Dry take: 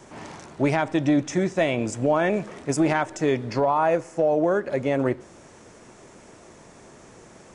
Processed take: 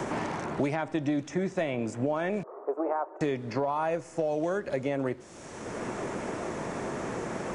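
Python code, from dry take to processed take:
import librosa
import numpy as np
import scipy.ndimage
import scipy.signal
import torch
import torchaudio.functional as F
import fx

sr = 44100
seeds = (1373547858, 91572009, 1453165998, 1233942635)

y = fx.ellip_bandpass(x, sr, low_hz=390.0, high_hz=1200.0, order=3, stop_db=60, at=(2.43, 3.21))
y = fx.band_squash(y, sr, depth_pct=100)
y = y * librosa.db_to_amplitude(-7.5)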